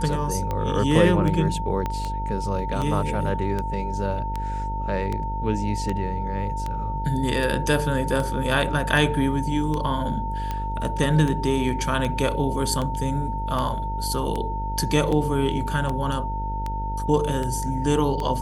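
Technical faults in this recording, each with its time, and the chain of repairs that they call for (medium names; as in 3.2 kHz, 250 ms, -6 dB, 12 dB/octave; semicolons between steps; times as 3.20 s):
buzz 50 Hz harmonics 13 -29 dBFS
tick 78 rpm -15 dBFS
whine 900 Hz -29 dBFS
1.86 s: pop -14 dBFS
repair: de-click; de-hum 50 Hz, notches 13; band-stop 900 Hz, Q 30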